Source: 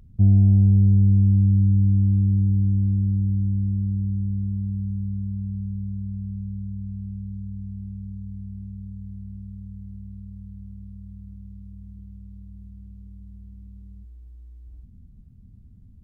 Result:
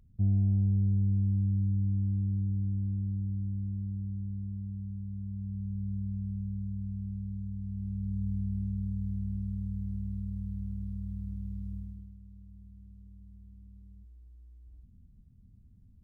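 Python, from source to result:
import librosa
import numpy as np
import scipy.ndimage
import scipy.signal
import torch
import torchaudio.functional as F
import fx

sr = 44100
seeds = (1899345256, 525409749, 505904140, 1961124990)

y = fx.gain(x, sr, db=fx.line((5.07, -11.0), (5.94, -4.0), (7.61, -4.0), (8.24, 3.0), (11.76, 3.0), (12.17, -9.0)))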